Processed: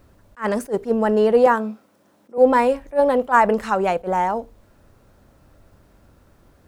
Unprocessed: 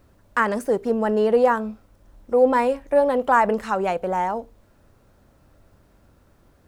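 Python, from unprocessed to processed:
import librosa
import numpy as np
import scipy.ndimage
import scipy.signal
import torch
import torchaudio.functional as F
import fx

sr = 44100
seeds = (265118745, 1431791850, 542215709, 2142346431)

y = fx.highpass(x, sr, hz=170.0, slope=24, at=(1.46, 2.38))
y = fx.attack_slew(y, sr, db_per_s=330.0)
y = F.gain(torch.from_numpy(y), 3.0).numpy()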